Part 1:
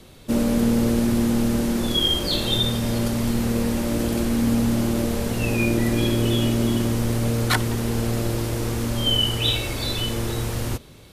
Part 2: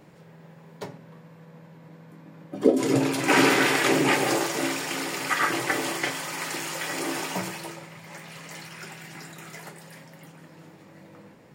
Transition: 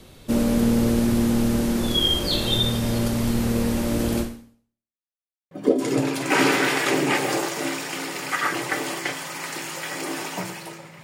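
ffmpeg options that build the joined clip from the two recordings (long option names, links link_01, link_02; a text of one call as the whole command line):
ffmpeg -i cue0.wav -i cue1.wav -filter_complex "[0:a]apad=whole_dur=11.03,atrim=end=11.03,asplit=2[link_01][link_02];[link_01]atrim=end=5.04,asetpts=PTS-STARTPTS,afade=type=out:start_time=4.2:duration=0.84:curve=exp[link_03];[link_02]atrim=start=5.04:end=5.51,asetpts=PTS-STARTPTS,volume=0[link_04];[1:a]atrim=start=2.49:end=8.01,asetpts=PTS-STARTPTS,afade=type=in:duration=0.004:curve=hsin[link_05];[link_03][link_04][link_05]concat=n=3:v=0:a=1" out.wav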